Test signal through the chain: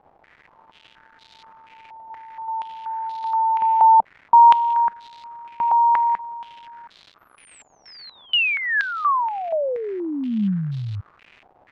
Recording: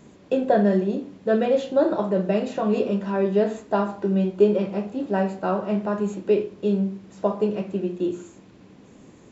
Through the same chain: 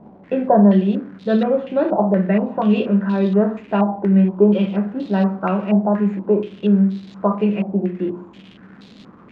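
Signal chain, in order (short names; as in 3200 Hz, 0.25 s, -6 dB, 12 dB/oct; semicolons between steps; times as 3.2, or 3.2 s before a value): bell 200 Hz +9 dB 0.54 oct; crackle 360/s -37 dBFS; stepped low-pass 4.2 Hz 780–3900 Hz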